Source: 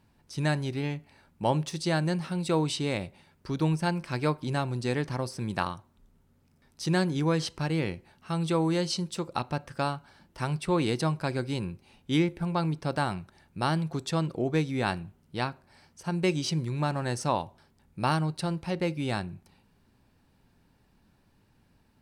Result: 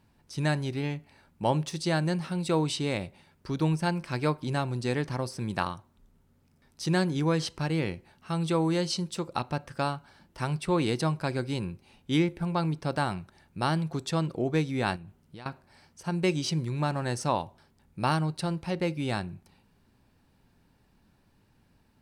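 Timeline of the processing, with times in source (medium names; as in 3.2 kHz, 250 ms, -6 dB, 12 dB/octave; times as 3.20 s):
14.96–15.46 s: compression 8:1, threshold -41 dBFS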